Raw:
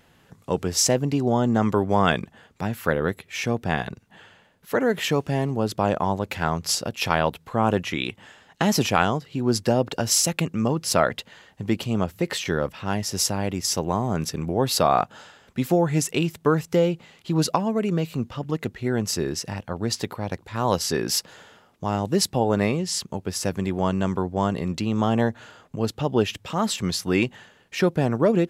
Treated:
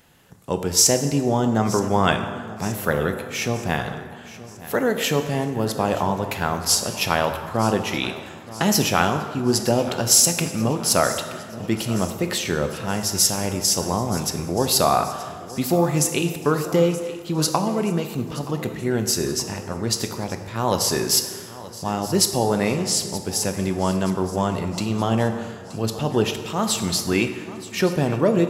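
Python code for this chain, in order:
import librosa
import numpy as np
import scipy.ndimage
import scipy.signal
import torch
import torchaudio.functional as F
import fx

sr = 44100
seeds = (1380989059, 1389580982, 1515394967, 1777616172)

p1 = fx.high_shelf(x, sr, hz=6000.0, db=9.5)
p2 = p1 + fx.echo_feedback(p1, sr, ms=925, feedback_pct=53, wet_db=-17.0, dry=0)
y = fx.rev_plate(p2, sr, seeds[0], rt60_s=1.7, hf_ratio=0.6, predelay_ms=0, drr_db=6.5)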